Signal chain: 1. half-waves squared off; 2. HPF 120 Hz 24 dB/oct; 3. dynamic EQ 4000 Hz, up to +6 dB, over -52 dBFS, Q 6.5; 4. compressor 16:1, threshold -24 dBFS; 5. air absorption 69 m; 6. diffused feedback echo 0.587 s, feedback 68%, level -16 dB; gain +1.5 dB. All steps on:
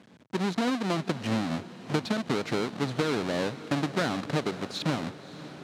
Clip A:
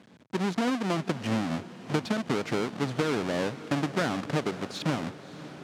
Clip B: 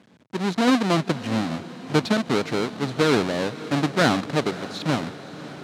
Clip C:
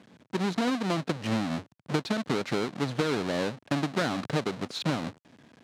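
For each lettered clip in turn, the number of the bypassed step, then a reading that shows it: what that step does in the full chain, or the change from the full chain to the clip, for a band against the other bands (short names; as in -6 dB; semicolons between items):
3, 4 kHz band -2.0 dB; 4, mean gain reduction 4.5 dB; 6, echo-to-direct -13.5 dB to none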